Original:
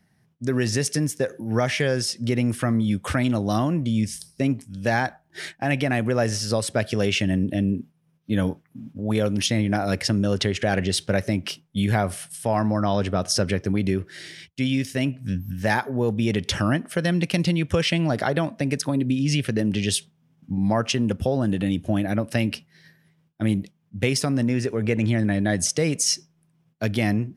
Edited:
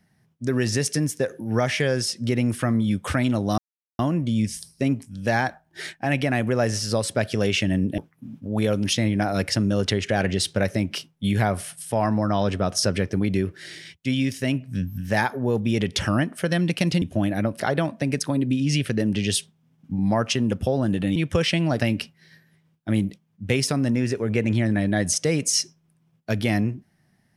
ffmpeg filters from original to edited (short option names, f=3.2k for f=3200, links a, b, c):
-filter_complex "[0:a]asplit=7[a][b][c][d][e][f][g];[a]atrim=end=3.58,asetpts=PTS-STARTPTS,afade=t=out:st=3.576:d=0.004:c=hsin,apad=pad_dur=0.41[h];[b]atrim=start=3.58:end=7.572,asetpts=PTS-STARTPTS,afade=t=in:d=0.004:c=hsin[i];[c]atrim=start=8.508:end=17.552[j];[d]atrim=start=21.748:end=22.332[k];[e]atrim=start=18.188:end=21.752[l];[f]atrim=start=17.548:end=18.192[m];[g]atrim=start=22.328[n];[h][i]concat=n=2:v=0:a=1[o];[o][j]acrossfade=d=0.004:c1=hsin:c2=hsin[p];[p][k]acrossfade=d=0.004:c1=hsin:c2=hsin[q];[q][l]acrossfade=d=0.004:c1=hsin:c2=hsin[r];[r][m]acrossfade=d=0.004:c1=hsin:c2=hsin[s];[s][n]acrossfade=d=0.004:c1=hsin:c2=hsin"